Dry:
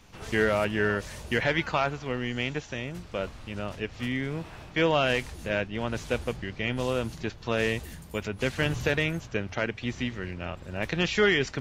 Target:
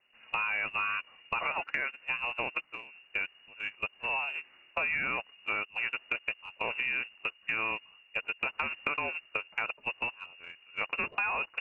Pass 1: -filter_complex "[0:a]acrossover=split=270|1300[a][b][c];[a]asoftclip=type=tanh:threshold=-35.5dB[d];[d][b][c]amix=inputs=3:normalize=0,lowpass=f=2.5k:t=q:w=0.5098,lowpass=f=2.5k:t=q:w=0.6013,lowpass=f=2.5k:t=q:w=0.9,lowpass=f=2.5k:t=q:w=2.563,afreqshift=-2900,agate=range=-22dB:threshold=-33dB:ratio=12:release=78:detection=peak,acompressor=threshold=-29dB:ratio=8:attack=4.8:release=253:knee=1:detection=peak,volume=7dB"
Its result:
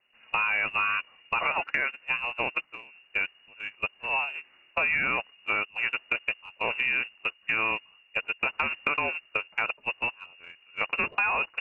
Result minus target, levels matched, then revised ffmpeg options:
compressor: peak gain reduction -5 dB
-filter_complex "[0:a]acrossover=split=270|1300[a][b][c];[a]asoftclip=type=tanh:threshold=-35.5dB[d];[d][b][c]amix=inputs=3:normalize=0,lowpass=f=2.5k:t=q:w=0.5098,lowpass=f=2.5k:t=q:w=0.6013,lowpass=f=2.5k:t=q:w=0.9,lowpass=f=2.5k:t=q:w=2.563,afreqshift=-2900,agate=range=-22dB:threshold=-33dB:ratio=12:release=78:detection=peak,acompressor=threshold=-35dB:ratio=8:attack=4.8:release=253:knee=1:detection=peak,volume=7dB"

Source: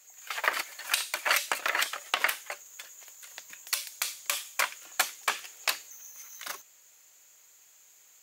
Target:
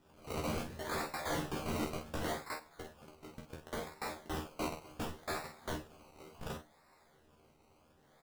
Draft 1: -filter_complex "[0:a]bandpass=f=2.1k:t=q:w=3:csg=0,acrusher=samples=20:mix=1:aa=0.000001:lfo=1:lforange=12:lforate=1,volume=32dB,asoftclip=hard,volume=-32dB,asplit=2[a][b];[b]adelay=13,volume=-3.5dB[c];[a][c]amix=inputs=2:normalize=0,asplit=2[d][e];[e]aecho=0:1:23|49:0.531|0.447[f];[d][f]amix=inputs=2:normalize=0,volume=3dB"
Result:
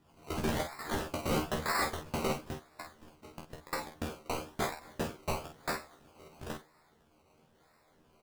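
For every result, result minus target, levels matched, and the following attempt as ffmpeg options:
decimation with a swept rate: distortion +22 dB; overloaded stage: distortion -4 dB
-filter_complex "[0:a]bandpass=f=2.1k:t=q:w=3:csg=0,acrusher=samples=20:mix=1:aa=0.000001:lfo=1:lforange=12:lforate=0.69,volume=32dB,asoftclip=hard,volume=-32dB,asplit=2[a][b];[b]adelay=13,volume=-3.5dB[c];[a][c]amix=inputs=2:normalize=0,asplit=2[d][e];[e]aecho=0:1:23|49:0.531|0.447[f];[d][f]amix=inputs=2:normalize=0,volume=3dB"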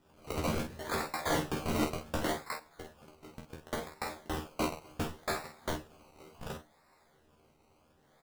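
overloaded stage: distortion -4 dB
-filter_complex "[0:a]bandpass=f=2.1k:t=q:w=3:csg=0,acrusher=samples=20:mix=1:aa=0.000001:lfo=1:lforange=12:lforate=0.69,volume=39.5dB,asoftclip=hard,volume=-39.5dB,asplit=2[a][b];[b]adelay=13,volume=-3.5dB[c];[a][c]amix=inputs=2:normalize=0,asplit=2[d][e];[e]aecho=0:1:23|49:0.531|0.447[f];[d][f]amix=inputs=2:normalize=0,volume=3dB"

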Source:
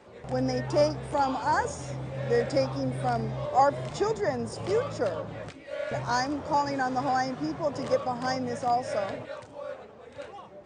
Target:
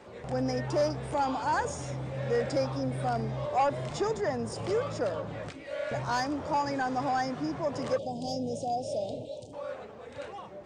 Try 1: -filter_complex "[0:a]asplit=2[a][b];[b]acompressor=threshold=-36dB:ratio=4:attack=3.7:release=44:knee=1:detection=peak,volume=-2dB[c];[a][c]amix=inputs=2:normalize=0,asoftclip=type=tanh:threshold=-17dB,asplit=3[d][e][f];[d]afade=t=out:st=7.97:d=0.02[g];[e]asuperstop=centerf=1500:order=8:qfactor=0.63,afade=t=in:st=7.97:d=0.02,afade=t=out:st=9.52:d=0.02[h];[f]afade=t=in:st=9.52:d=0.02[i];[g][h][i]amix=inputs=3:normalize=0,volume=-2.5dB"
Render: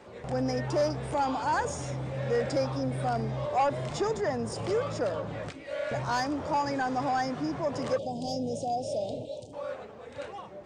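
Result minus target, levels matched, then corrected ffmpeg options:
compressor: peak gain reduction -5 dB
-filter_complex "[0:a]asplit=2[a][b];[b]acompressor=threshold=-43dB:ratio=4:attack=3.7:release=44:knee=1:detection=peak,volume=-2dB[c];[a][c]amix=inputs=2:normalize=0,asoftclip=type=tanh:threshold=-17dB,asplit=3[d][e][f];[d]afade=t=out:st=7.97:d=0.02[g];[e]asuperstop=centerf=1500:order=8:qfactor=0.63,afade=t=in:st=7.97:d=0.02,afade=t=out:st=9.52:d=0.02[h];[f]afade=t=in:st=9.52:d=0.02[i];[g][h][i]amix=inputs=3:normalize=0,volume=-2.5dB"

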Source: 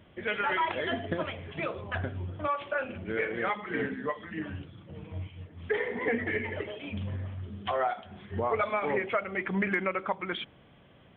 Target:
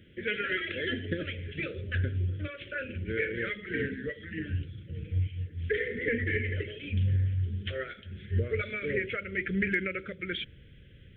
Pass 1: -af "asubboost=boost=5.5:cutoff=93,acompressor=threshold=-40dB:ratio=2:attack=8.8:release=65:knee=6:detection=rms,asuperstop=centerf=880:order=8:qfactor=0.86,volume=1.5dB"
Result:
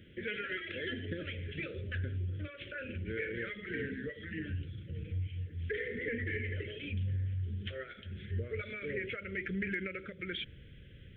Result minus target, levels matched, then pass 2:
compressor: peak gain reduction +9.5 dB
-af "asubboost=boost=5.5:cutoff=93,asuperstop=centerf=880:order=8:qfactor=0.86,volume=1.5dB"

